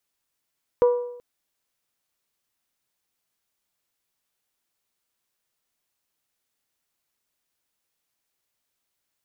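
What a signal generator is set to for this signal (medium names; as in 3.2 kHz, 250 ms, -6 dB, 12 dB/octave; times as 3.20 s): metal hit bell, length 0.38 s, lowest mode 487 Hz, decay 0.77 s, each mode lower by 12 dB, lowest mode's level -12 dB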